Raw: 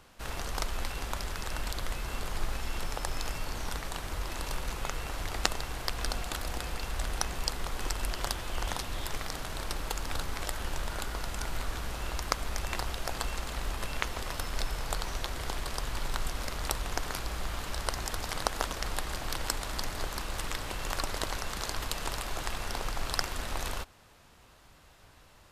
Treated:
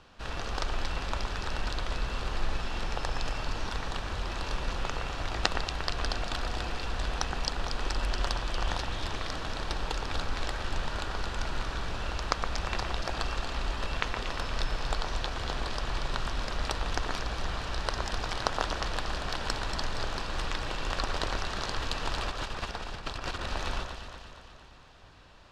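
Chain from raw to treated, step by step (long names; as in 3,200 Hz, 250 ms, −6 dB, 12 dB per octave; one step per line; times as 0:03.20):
0:22.22–0:23.49: compressor whose output falls as the input rises −37 dBFS, ratio −0.5
Chebyshev low-pass filter 4,300 Hz, order 2
notch filter 2,100 Hz, Q 12
delay that swaps between a low-pass and a high-pass 117 ms, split 2,300 Hz, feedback 75%, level −5 dB
level +2 dB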